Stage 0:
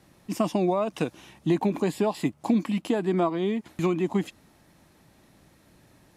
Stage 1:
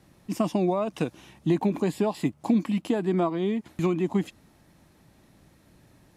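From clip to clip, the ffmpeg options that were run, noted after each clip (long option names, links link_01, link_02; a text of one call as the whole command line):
ffmpeg -i in.wav -af "lowshelf=frequency=260:gain=4.5,volume=-2dB" out.wav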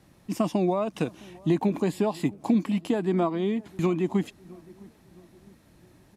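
ffmpeg -i in.wav -filter_complex "[0:a]asplit=2[link_01][link_02];[link_02]adelay=661,lowpass=frequency=1000:poles=1,volume=-22.5dB,asplit=2[link_03][link_04];[link_04]adelay=661,lowpass=frequency=1000:poles=1,volume=0.48,asplit=2[link_05][link_06];[link_06]adelay=661,lowpass=frequency=1000:poles=1,volume=0.48[link_07];[link_01][link_03][link_05][link_07]amix=inputs=4:normalize=0" out.wav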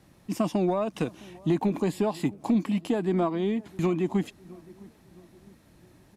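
ffmpeg -i in.wav -af "asoftclip=type=tanh:threshold=-14dB" out.wav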